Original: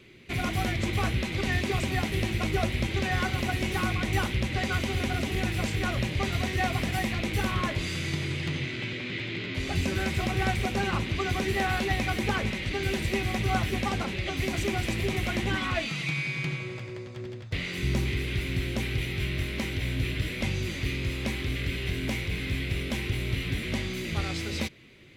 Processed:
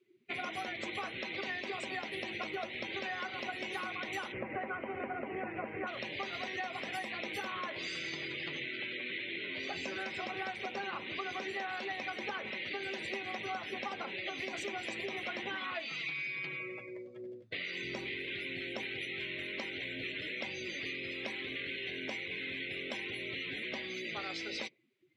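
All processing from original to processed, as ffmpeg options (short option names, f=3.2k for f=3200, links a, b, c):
-filter_complex "[0:a]asettb=1/sr,asplit=3[a][b][c];[a]atrim=end=4.324[d];[b]atrim=start=4.32:end=5.87,asetpts=PTS-STARTPTS,afade=t=in:d=0.004:c=qsin,afade=t=out:st=1.546:d=0.004:c=qsin,lowpass=1.4k,acontrast=34[e];[c]atrim=start=5.866[f];[d][e]acrossfade=d=0.004:c1=hsin:c2=qsin[g];[g][f]acrossfade=d=0.004:c1=qsin:c2=hsin,afftdn=nr=27:nf=-41,highpass=440,acompressor=threshold=-36dB:ratio=6"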